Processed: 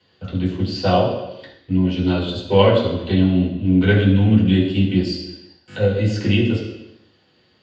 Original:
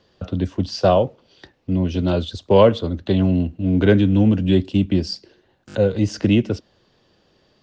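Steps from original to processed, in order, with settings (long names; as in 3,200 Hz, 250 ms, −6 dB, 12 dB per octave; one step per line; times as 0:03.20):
high-shelf EQ 2,500 Hz +9 dB
convolution reverb RT60 0.90 s, pre-delay 3 ms, DRR −6.5 dB
level −17 dB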